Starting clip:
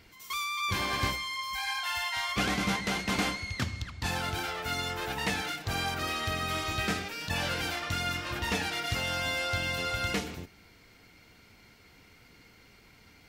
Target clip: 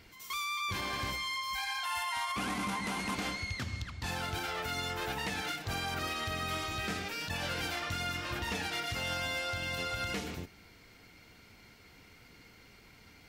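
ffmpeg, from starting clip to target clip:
ffmpeg -i in.wav -filter_complex "[0:a]asettb=1/sr,asplit=3[link_01][link_02][link_03];[link_01]atrim=end=1.854[link_04];[link_02]atrim=start=1.85:end=3.15,asetpts=PTS-STARTPTS,afade=type=in:duration=0.004:curve=qsin,afade=type=out:start_time=1.296:duration=0.004:curve=qsin,equalizer=frequency=250:width_type=o:width=0.67:gain=9,equalizer=frequency=1000:width_type=o:width=0.67:gain=11,equalizer=frequency=2500:width_type=o:width=0.67:gain=3,equalizer=frequency=10000:width_type=o:width=0.67:gain=11[link_05];[link_03]atrim=start=3.146[link_06];[link_04][link_05]acrossfade=duration=0.004:curve1=hsin:curve2=qsin[link_07];[link_07][link_06]acrossfade=duration=0.004:curve1=qsin:curve2=hsin,alimiter=level_in=2dB:limit=-24dB:level=0:latency=1:release=114,volume=-2dB" out.wav

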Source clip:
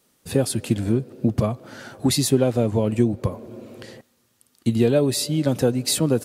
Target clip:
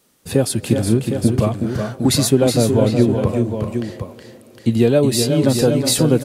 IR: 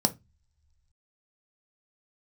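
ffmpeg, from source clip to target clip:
-filter_complex "[0:a]asplit=2[link_01][link_02];[link_02]aecho=0:1:369|402|759:0.473|0.237|0.398[link_03];[link_01][link_03]amix=inputs=2:normalize=0,asettb=1/sr,asplit=3[link_04][link_05][link_06];[link_04]atrim=end=2.774[link_07];[link_05]atrim=start=2.77:end=4.74,asetpts=PTS-STARTPTS,afade=type=in:duration=0.004:curve=qsin,afade=type=out:start_time=1.966:duration=0.004:curve=qsin,acrossover=split=4000[link_08][link_09];[link_09]acompressor=threshold=-45dB:ratio=4:attack=1:release=60[link_10];[link_08][link_10]amix=inputs=2:normalize=0[link_11];[link_06]atrim=start=4.736[link_12];[link_07][link_11]acrossfade=duration=0.004:curve1=hsin:curve2=qsin[link_13];[link_13][link_12]acrossfade=duration=0.004:curve1=qsin:curve2=hsin,volume=4dB"

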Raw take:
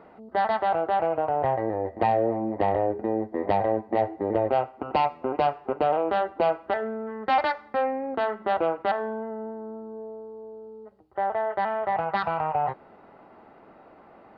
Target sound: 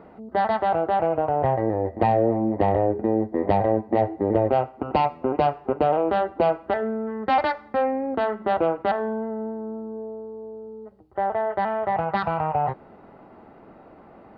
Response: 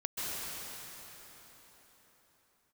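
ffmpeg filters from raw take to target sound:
-af "lowshelf=frequency=380:gain=9"

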